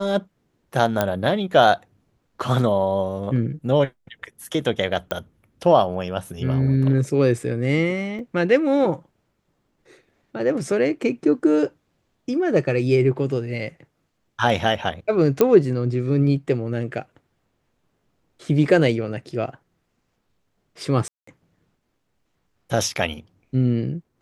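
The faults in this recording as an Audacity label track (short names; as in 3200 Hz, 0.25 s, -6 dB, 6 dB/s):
1.010000	1.010000	pop -6 dBFS
5.110000	5.110000	pop -11 dBFS
8.190000	8.190000	gap 2.1 ms
15.410000	15.410000	pop -4 dBFS
21.080000	21.270000	gap 0.194 s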